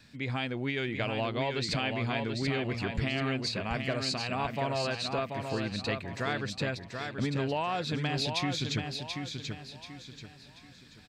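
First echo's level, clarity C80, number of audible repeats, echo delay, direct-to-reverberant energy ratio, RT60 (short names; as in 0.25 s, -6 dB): -5.5 dB, none, 4, 0.734 s, none, none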